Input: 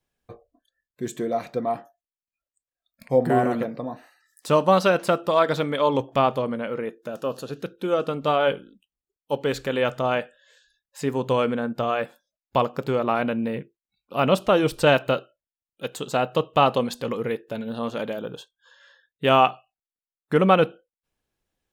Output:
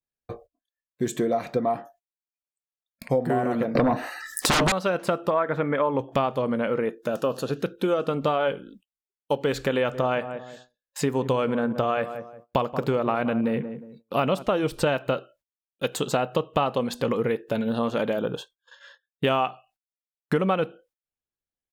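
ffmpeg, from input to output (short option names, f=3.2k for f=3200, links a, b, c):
-filter_complex "[0:a]asettb=1/sr,asplit=3[a][b][c];[a]atrim=end=3.754[d];[b]atrim=start=3.75:end=4.72,asetpts=PTS-STARTPTS,afade=t=in:d=0.004:c=qsin,afade=t=out:st=0.966:d=0.004:c=qsin,aeval=exprs='0.501*sin(PI/2*8.91*val(0)/0.501)':c=same[e];[c]atrim=start=4.716[f];[d][e]acrossfade=d=0.004:c1=hsin:c2=qsin[g];[g][f]acrossfade=d=0.004:c1=qsin:c2=hsin,asettb=1/sr,asplit=3[h][i][j];[h]atrim=end=5.304[k];[i]atrim=start=5.3:end=5.99,asetpts=PTS-STARTPTS,afade=t=in:d=0.004:c=qsin,afade=t=out:st=0.686:d=0.004:c=qsin,highshelf=f=2.9k:t=q:w=1.5:g=-13.5[l];[j]atrim=start=5.986[m];[k][l]acrossfade=d=0.004:c1=hsin:c2=qsin[n];[n][m]acrossfade=d=0.004:c1=qsin:c2=hsin,asplit=3[o][p][q];[o]afade=t=out:st=9.92:d=0.02[r];[p]asplit=2[s][t];[t]adelay=179,lowpass=f=960:p=1,volume=-13.5dB,asplit=2[u][v];[v]adelay=179,lowpass=f=960:p=1,volume=0.34,asplit=2[w][x];[x]adelay=179,lowpass=f=960:p=1,volume=0.34[y];[s][u][w][y]amix=inputs=4:normalize=0,afade=t=in:st=9.92:d=0.02,afade=t=out:st=14.42:d=0.02[z];[q]afade=t=in:st=14.42:d=0.02[aa];[r][z][aa]amix=inputs=3:normalize=0,agate=range=-24dB:threshold=-54dB:ratio=16:detection=peak,acompressor=threshold=-27dB:ratio=6,adynamicequalizer=threshold=0.00355:dfrequency=2700:dqfactor=0.7:tfrequency=2700:tqfactor=0.7:attack=5:release=100:ratio=0.375:range=2.5:mode=cutabove:tftype=highshelf,volume=6.5dB"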